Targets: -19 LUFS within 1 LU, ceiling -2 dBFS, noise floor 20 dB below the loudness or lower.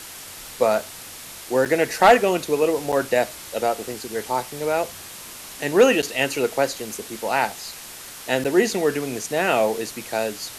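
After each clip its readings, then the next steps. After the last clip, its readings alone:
dropouts 4; longest dropout 7.3 ms; noise floor -39 dBFS; noise floor target -42 dBFS; loudness -22.0 LUFS; peak level -5.5 dBFS; loudness target -19.0 LUFS
-> interpolate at 1.65/2.92/6.02/8.44 s, 7.3 ms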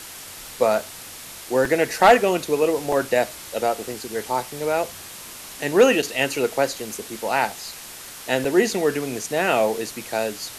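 dropouts 0; noise floor -39 dBFS; noise floor target -42 dBFS
-> noise print and reduce 6 dB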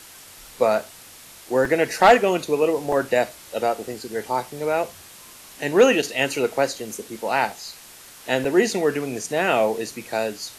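noise floor -45 dBFS; loudness -22.0 LUFS; peak level -5.5 dBFS; loudness target -19.0 LUFS
-> trim +3 dB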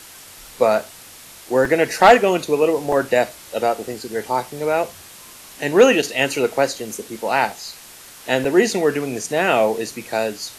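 loudness -19.0 LUFS; peak level -2.5 dBFS; noise floor -42 dBFS

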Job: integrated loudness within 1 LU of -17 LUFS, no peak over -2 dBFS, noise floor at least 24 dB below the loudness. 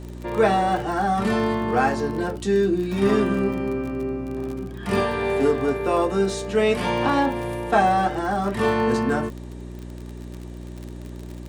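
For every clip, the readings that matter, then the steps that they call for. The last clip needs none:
tick rate 38 per s; hum 60 Hz; highest harmonic 360 Hz; hum level -33 dBFS; loudness -22.5 LUFS; peak level -6.5 dBFS; loudness target -17.0 LUFS
-> de-click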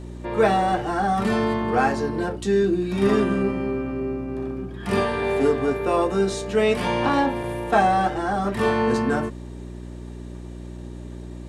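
tick rate 0.087 per s; hum 60 Hz; highest harmonic 360 Hz; hum level -33 dBFS
-> de-hum 60 Hz, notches 6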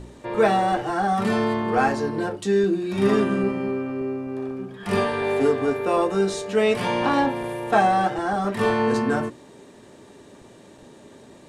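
hum not found; loudness -22.5 LUFS; peak level -6.5 dBFS; loudness target -17.0 LUFS
-> trim +5.5 dB; peak limiter -2 dBFS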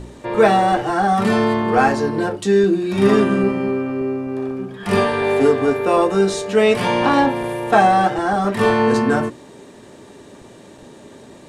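loudness -17.5 LUFS; peak level -2.0 dBFS; noise floor -43 dBFS

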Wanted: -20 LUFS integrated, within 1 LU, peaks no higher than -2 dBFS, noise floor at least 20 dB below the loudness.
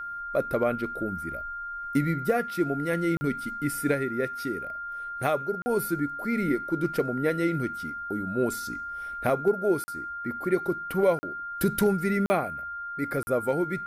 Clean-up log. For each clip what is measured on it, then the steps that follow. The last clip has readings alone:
dropouts 6; longest dropout 40 ms; steady tone 1.4 kHz; tone level -33 dBFS; loudness -28.0 LUFS; peak level -11.0 dBFS; loudness target -20.0 LUFS
-> interpolate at 3.17/5.62/9.84/11.19/12.26/13.23 s, 40 ms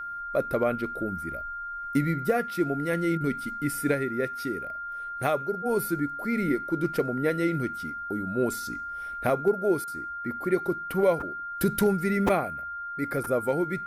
dropouts 0; steady tone 1.4 kHz; tone level -33 dBFS
-> band-stop 1.4 kHz, Q 30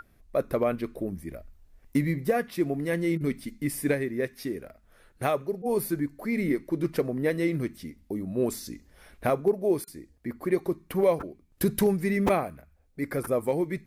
steady tone not found; loudness -28.5 LUFS; peak level -11.0 dBFS; loudness target -20.0 LUFS
-> trim +8.5 dB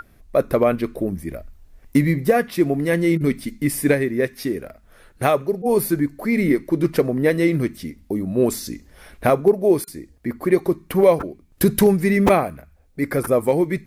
loudness -20.0 LUFS; peak level -2.5 dBFS; noise floor -53 dBFS

